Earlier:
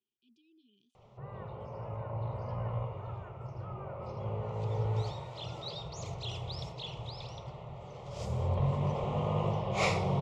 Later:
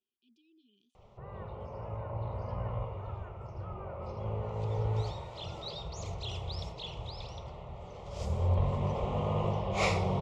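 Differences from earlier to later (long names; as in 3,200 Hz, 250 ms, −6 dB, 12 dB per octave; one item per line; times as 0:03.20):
background: add low-shelf EQ 110 Hz +11 dB
master: add parametric band 130 Hz −12.5 dB 0.42 octaves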